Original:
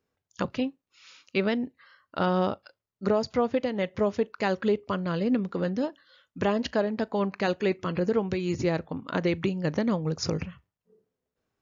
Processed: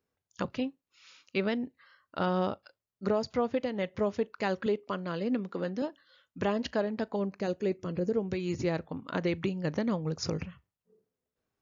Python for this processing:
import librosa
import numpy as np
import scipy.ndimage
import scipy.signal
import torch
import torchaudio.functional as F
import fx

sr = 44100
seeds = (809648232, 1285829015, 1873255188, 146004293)

y = fx.highpass(x, sr, hz=190.0, slope=12, at=(4.66, 5.82))
y = fx.band_shelf(y, sr, hz=1800.0, db=-8.5, octaves=2.7, at=(7.16, 8.32))
y = y * librosa.db_to_amplitude(-4.0)